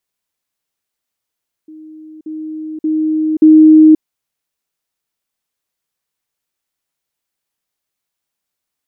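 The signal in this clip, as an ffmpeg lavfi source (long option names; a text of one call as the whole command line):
ffmpeg -f lavfi -i "aevalsrc='pow(10,(-32+10*floor(t/0.58))/20)*sin(2*PI*312*t)*clip(min(mod(t,0.58),0.53-mod(t,0.58))/0.005,0,1)':duration=2.32:sample_rate=44100" out.wav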